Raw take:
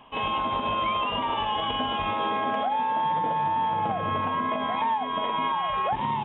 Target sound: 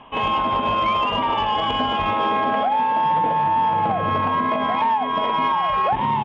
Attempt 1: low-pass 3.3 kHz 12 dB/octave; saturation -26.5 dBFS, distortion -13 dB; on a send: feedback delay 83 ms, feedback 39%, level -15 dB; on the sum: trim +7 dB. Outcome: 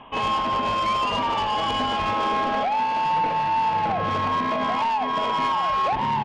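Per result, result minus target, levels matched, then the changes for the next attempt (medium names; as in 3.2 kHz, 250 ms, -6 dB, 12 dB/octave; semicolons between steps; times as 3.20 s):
saturation: distortion +13 dB; echo-to-direct +8.5 dB
change: saturation -17 dBFS, distortion -26 dB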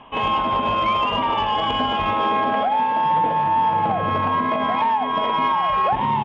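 echo-to-direct +8.5 dB
change: feedback delay 83 ms, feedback 39%, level -23.5 dB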